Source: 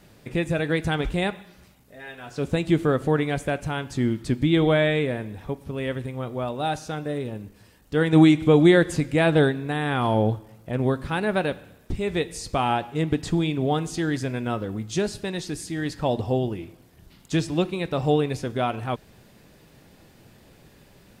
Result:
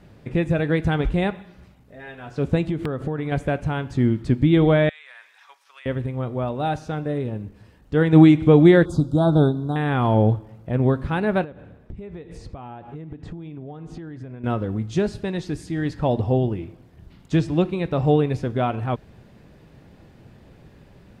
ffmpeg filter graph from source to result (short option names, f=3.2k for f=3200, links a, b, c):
-filter_complex "[0:a]asettb=1/sr,asplit=3[a][b][c];[a]atrim=end=2.664[d];[b]atrim=start=2.66:end=3.32,asetpts=PTS-STARTPTS,afade=t=in:d=0.004:c=qsin,afade=t=out:st=0.656:d=0.004:c=qsin,acompressor=threshold=-25dB:ratio=5:attack=3.2:release=140:knee=1:detection=peak,aeval=exprs='(mod(7.94*val(0)+1,2)-1)/7.94':c=same[e];[c]atrim=start=3.316[f];[d][e]acrossfade=d=0.004:c1=hsin:c2=qsin[g];[g][f]acrossfade=d=0.004:c1=qsin:c2=hsin,asettb=1/sr,asplit=3[h][i][j];[h]atrim=end=4.894[k];[i]atrim=start=4.89:end=5.86,asetpts=PTS-STARTPTS,afade=t=in:d=0.004:c=qsin,afade=t=out:st=0.966:d=0.004:c=qsin,highpass=f=1.2k:w=0.5412,highpass=f=1.2k:w=1.3066,equalizer=f=5.7k:t=o:w=1:g=8.5,acompressor=threshold=-38dB:ratio=12:attack=3.2:release=140:knee=1:detection=peak[l];[j]atrim=start=5.856[m];[k][l]acrossfade=d=0.004:c1=hsin:c2=qsin[n];[n][m]acrossfade=d=0.004:c1=qsin:c2=hsin,asettb=1/sr,asplit=3[o][p][q];[o]atrim=end=8.854[r];[p]atrim=start=8.85:end=9.76,asetpts=PTS-STARTPTS,afade=t=in:d=0.004:c=qsin,afade=t=out:st=0.906:d=0.004:c=qsin,asuperstop=centerf=2200:order=12:qfactor=1.1,equalizer=f=480:w=5.6:g=-8.5[s];[q]atrim=start=9.756[t];[r][s]acrossfade=d=0.004:c1=hsin:c2=qsin[u];[u][t]acrossfade=d=0.004:c1=qsin:c2=hsin,asettb=1/sr,asplit=3[v][w][x];[v]atrim=end=11.444[y];[w]atrim=start=11.44:end=14.44,asetpts=PTS-STARTPTS,afade=t=in:d=0.004:c=qsin,afade=t=out:st=2.996:d=0.004:c=qsin,highshelf=f=3.1k:g=-11.5,acompressor=threshold=-36dB:ratio=10:attack=3.2:release=140:knee=1:detection=peak[z];[x]atrim=start=14.436[aa];[y][z]acrossfade=d=0.004:c1=hsin:c2=qsin[ab];[ab][aa]acrossfade=d=0.004:c1=qsin:c2=hsin,lowpass=f=2k:p=1,equalizer=f=71:t=o:w=2.8:g=5,volume=2dB"